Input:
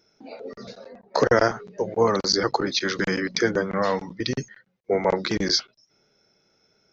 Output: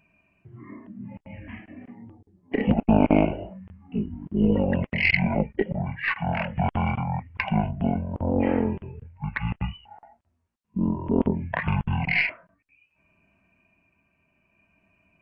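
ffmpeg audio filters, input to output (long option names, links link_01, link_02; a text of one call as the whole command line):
ffmpeg -i in.wav -af "asetrate=20066,aresample=44100,aeval=exprs='0.531*(cos(1*acos(clip(val(0)/0.531,-1,1)))-cos(1*PI/2))+0.0841*(cos(2*acos(clip(val(0)/0.531,-1,1)))-cos(2*PI/2))':channel_layout=same,tremolo=f=0.6:d=0.32" out.wav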